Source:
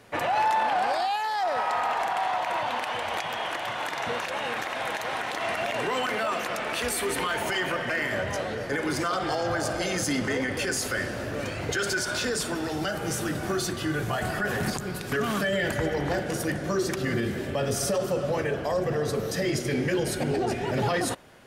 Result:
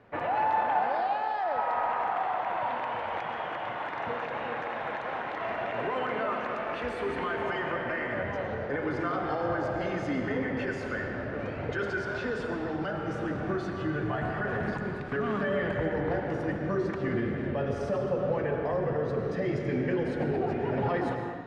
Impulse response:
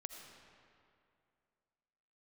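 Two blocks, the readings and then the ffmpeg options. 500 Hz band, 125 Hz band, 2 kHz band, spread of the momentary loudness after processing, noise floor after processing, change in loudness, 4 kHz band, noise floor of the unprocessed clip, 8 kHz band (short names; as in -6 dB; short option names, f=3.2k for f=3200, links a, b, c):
-2.0 dB, -2.0 dB, -5.0 dB, 5 LU, -36 dBFS, -3.0 dB, -14.0 dB, -34 dBFS, under -25 dB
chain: -filter_complex "[0:a]lowpass=1.8k[a];[1:a]atrim=start_sample=2205,afade=t=out:st=0.38:d=0.01,atrim=end_sample=17199,asetrate=31752,aresample=44100[b];[a][b]afir=irnorm=-1:irlink=0"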